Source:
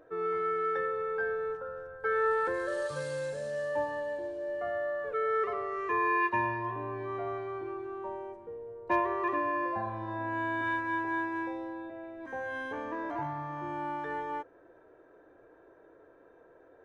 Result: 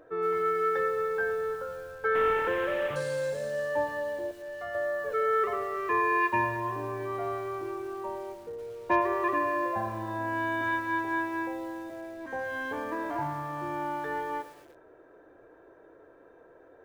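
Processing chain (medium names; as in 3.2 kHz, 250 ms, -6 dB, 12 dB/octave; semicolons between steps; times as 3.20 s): 2.15–2.96 s: one-bit delta coder 16 kbps, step -34 dBFS; 4.31–4.75 s: peaking EQ 370 Hz -9.5 dB 2.4 oct; bit-crushed delay 114 ms, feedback 55%, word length 8-bit, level -13 dB; trim +3 dB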